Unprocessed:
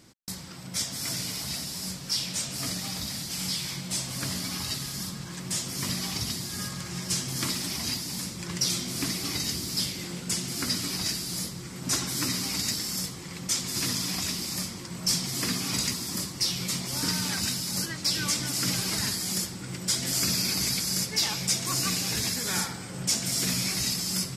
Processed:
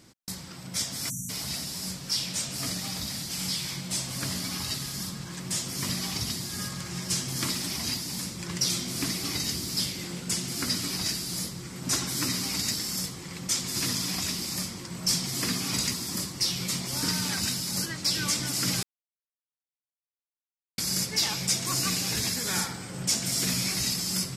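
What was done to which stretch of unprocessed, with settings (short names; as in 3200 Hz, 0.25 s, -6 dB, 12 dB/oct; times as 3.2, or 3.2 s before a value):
1.1–1.3 spectral delete 270–5700 Hz
18.83–20.78 mute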